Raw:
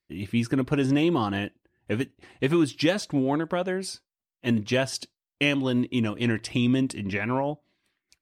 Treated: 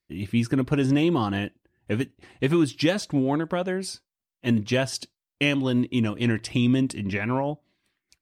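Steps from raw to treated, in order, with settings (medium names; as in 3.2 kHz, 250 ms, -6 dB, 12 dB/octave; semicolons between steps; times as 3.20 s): tone controls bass +3 dB, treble +1 dB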